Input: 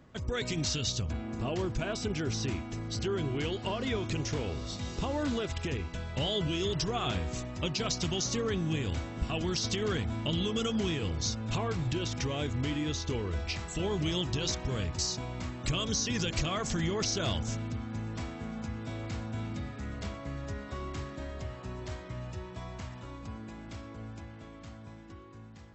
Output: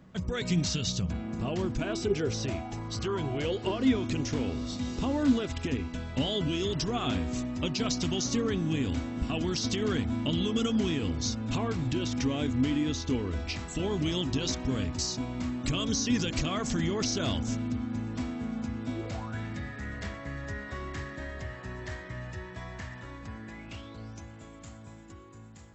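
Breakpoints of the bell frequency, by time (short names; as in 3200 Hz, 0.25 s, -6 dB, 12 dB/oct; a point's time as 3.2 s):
bell +14.5 dB 0.27 oct
1.45 s 180 Hz
3.05 s 1200 Hz
3.86 s 260 Hz
18.93 s 260 Hz
19.38 s 1800 Hz
23.5 s 1800 Hz
24.28 s 7200 Hz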